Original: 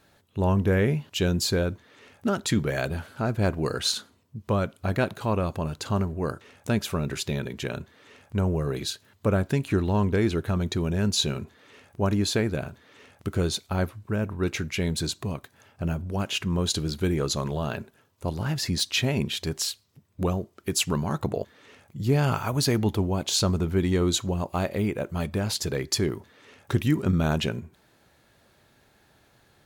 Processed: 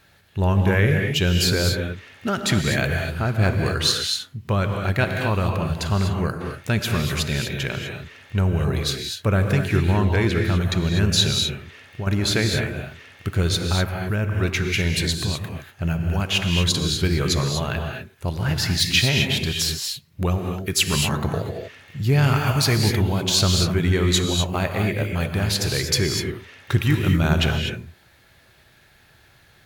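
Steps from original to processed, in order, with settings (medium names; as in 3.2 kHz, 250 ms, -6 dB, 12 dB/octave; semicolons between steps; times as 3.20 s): 11.31–12.07 s: compression, threshold -30 dBFS, peak gain reduction 10.5 dB; graphic EQ 250/500/1000/2000/8000 Hz -7/-5/-4/+3/-4 dB; gated-style reverb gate 270 ms rising, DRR 3 dB; trim +6.5 dB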